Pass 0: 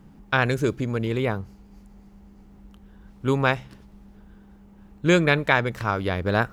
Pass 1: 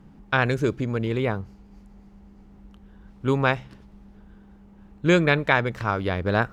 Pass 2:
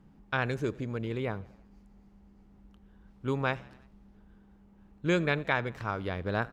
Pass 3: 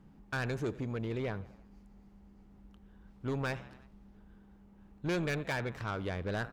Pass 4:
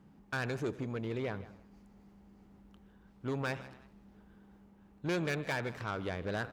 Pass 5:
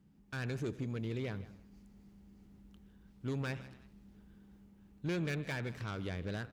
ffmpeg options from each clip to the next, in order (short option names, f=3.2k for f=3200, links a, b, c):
-af "highshelf=f=8.4k:g=-11"
-filter_complex "[0:a]asplit=5[a][b][c][d][e];[b]adelay=86,afreqshift=37,volume=-23.5dB[f];[c]adelay=172,afreqshift=74,volume=-28.1dB[g];[d]adelay=258,afreqshift=111,volume=-32.7dB[h];[e]adelay=344,afreqshift=148,volume=-37.2dB[i];[a][f][g][h][i]amix=inputs=5:normalize=0,volume=-8.5dB"
-af "asoftclip=type=tanh:threshold=-28.5dB"
-af "highpass=f=110:p=1,areverse,acompressor=mode=upward:threshold=-53dB:ratio=2.5,areverse,aecho=1:1:157:0.133"
-filter_complex "[0:a]acrossover=split=3000[a][b];[b]alimiter=level_in=15.5dB:limit=-24dB:level=0:latency=1:release=490,volume=-15.5dB[c];[a][c]amix=inputs=2:normalize=0,equalizer=f=850:w=0.5:g=-11,dynaudnorm=f=130:g=5:m=6dB,volume=-3.5dB"